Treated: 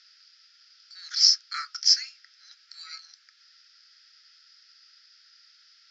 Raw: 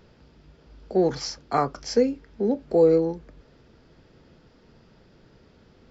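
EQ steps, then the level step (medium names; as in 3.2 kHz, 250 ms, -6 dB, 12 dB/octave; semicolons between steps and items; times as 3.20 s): rippled Chebyshev high-pass 1.3 kHz, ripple 3 dB; resonant low-pass 5.2 kHz, resonance Q 5; tilt EQ +1.5 dB/octave; 0.0 dB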